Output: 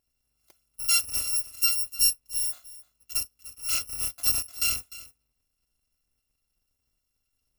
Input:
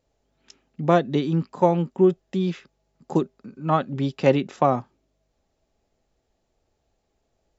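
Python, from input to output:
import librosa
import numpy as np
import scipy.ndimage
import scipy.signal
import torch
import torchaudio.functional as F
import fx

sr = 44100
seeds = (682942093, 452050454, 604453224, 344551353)

p1 = fx.bit_reversed(x, sr, seeds[0], block=256)
p2 = fx.hpss(p1, sr, part='harmonic', gain_db=4)
p3 = p2 + fx.echo_single(p2, sr, ms=301, db=-17.5, dry=0)
y = p3 * 10.0 ** (-9.0 / 20.0)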